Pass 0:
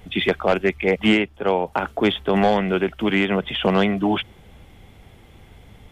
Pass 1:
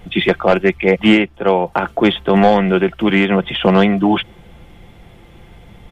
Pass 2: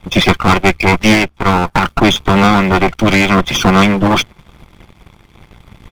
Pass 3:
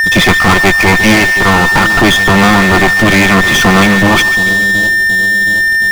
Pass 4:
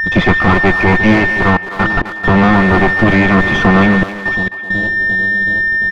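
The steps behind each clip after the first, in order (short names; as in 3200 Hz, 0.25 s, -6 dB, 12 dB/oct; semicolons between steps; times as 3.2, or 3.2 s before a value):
high shelf 4200 Hz -6 dB; comb 5.8 ms, depth 37%; gain +5.5 dB
minimum comb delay 0.87 ms; harmonic-percussive split percussive +6 dB; sample leveller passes 2; gain -4 dB
split-band echo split 690 Hz, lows 0.723 s, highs 0.144 s, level -13 dB; whine 1800 Hz -13 dBFS; power-law curve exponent 0.5; gain -2 dB
step gate "xxxxxxx.x.x" 67 bpm -24 dB; tape spacing loss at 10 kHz 34 dB; speakerphone echo 0.26 s, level -9 dB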